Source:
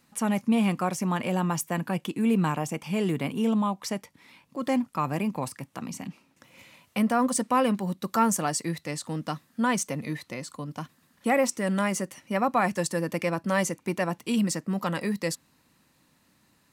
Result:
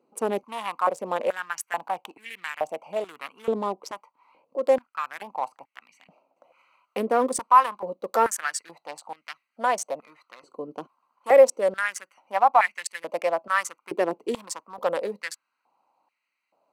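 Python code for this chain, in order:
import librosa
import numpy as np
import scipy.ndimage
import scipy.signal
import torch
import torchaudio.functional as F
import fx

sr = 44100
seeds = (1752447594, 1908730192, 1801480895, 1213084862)

y = fx.wiener(x, sr, points=25)
y = fx.filter_held_highpass(y, sr, hz=2.3, low_hz=410.0, high_hz=2000.0)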